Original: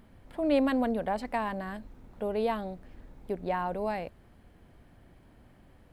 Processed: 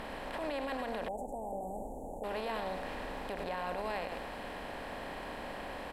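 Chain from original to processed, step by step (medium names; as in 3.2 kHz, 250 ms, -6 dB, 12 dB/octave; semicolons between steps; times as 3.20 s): spectral levelling over time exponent 0.4; peaking EQ 280 Hz -11 dB 2 oct; delay 101 ms -8.5 dB; peak limiter -25.5 dBFS, peak gain reduction 11.5 dB; 1.08–2.24 s: Chebyshev band-stop 840–6700 Hz, order 5; trim -2.5 dB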